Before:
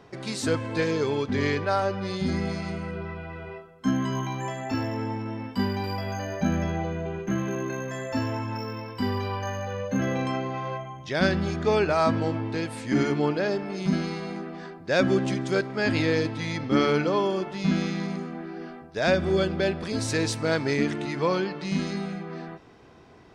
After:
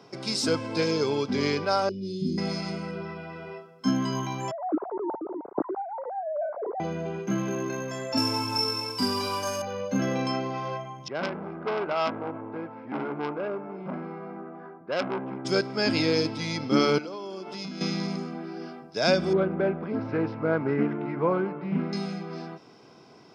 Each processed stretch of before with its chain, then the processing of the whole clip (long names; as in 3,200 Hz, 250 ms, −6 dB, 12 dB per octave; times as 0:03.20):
0:01.89–0:02.38: elliptic band-stop filter 370–2,900 Hz, stop band 50 dB + high shelf with overshoot 1,500 Hz −9.5 dB, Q 1.5
0:04.51–0:06.80: three sine waves on the formant tracks + Gaussian smoothing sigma 8.8 samples
0:08.17–0:09.62: variable-slope delta modulation 64 kbit/s + high-shelf EQ 4,200 Hz +6.5 dB + comb filter 6.9 ms, depth 68%
0:11.08–0:15.45: low-pass filter 1,600 Hz 24 dB per octave + low-shelf EQ 290 Hz −9.5 dB + saturating transformer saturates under 1,900 Hz
0:16.98–0:17.81: high-pass filter 190 Hz 24 dB per octave + downward compressor 10 to 1, threshold −33 dBFS
0:19.33–0:21.93: low-pass filter 1,900 Hz 24 dB per octave + highs frequency-modulated by the lows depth 0.2 ms
whole clip: high-pass filter 130 Hz 24 dB per octave; parametric band 5,200 Hz +14.5 dB 0.22 octaves; notch filter 1,800 Hz, Q 5.2